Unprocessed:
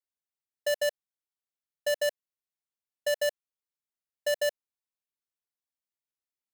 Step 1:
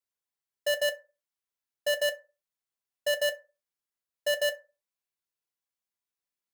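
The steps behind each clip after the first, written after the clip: on a send at -2 dB: Bessel high-pass 760 Hz, order 2 + reverb RT60 0.30 s, pre-delay 3 ms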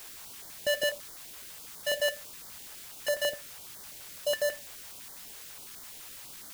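in parallel at -6.5 dB: requantised 6-bit, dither triangular; on the sum: stepped notch 12 Hz 200–2600 Hz; gain -3.5 dB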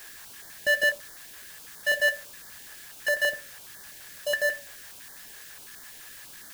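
bell 1700 Hz +14 dB 0.22 oct; de-hum 70.95 Hz, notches 19

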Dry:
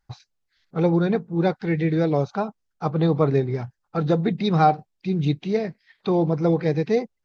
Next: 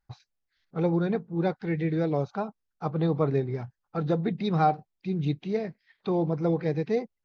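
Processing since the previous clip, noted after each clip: high shelf 5300 Hz -7 dB; gain -5.5 dB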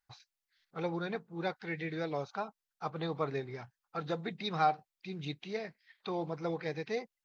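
tilt shelf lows -8.5 dB, about 650 Hz; gain -6.5 dB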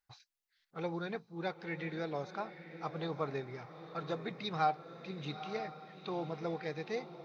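diffused feedback echo 0.913 s, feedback 44%, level -11 dB; gain -2.5 dB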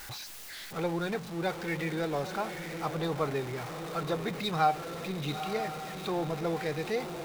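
zero-crossing step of -41.5 dBFS; gain +4.5 dB

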